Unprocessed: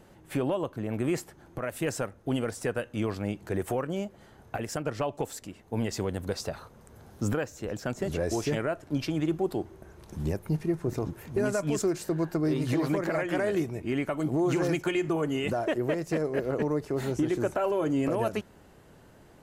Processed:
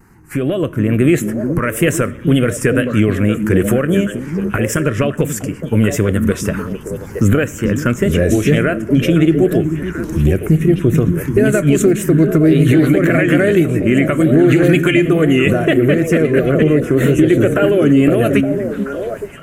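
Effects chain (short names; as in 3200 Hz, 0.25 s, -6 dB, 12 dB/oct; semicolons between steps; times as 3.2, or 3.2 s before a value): wow and flutter 66 cents; in parallel at +3 dB: compressor, threshold -28 dBFS, peak gain reduction 6 dB; on the sum: envelope phaser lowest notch 580 Hz, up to 1500 Hz, full sweep at -12 dBFS; AGC gain up to 11.5 dB; delay with a stepping band-pass 0.433 s, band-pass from 200 Hz, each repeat 1.4 oct, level -3 dB; on a send at -19 dB: reverb RT60 0.90 s, pre-delay 28 ms; on the sum: maximiser +3 dB; gain -1 dB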